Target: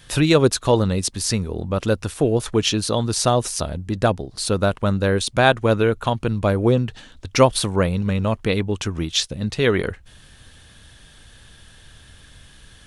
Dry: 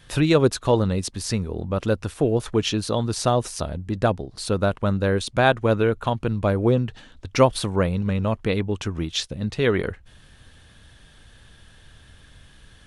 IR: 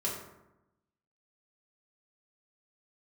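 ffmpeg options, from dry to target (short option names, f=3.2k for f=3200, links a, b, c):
-af "highshelf=f=3.7k:g=6.5,volume=2dB"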